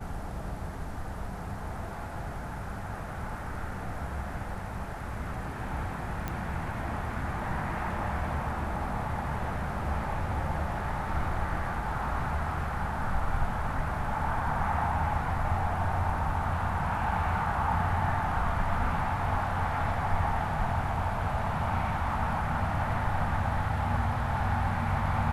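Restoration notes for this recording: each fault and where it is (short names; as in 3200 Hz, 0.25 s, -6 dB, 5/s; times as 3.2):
6.28 pop -19 dBFS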